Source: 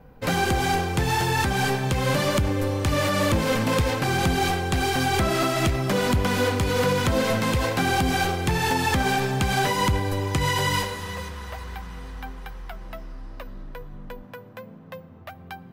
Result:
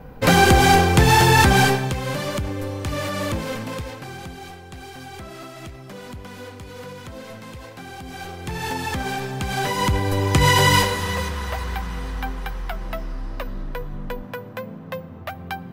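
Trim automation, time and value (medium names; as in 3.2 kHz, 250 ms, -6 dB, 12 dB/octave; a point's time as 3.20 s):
1.58 s +9 dB
2.01 s -3.5 dB
3.33 s -3.5 dB
4.39 s -15 dB
7.99 s -15 dB
8.65 s -4 dB
9.37 s -4 dB
10.47 s +8 dB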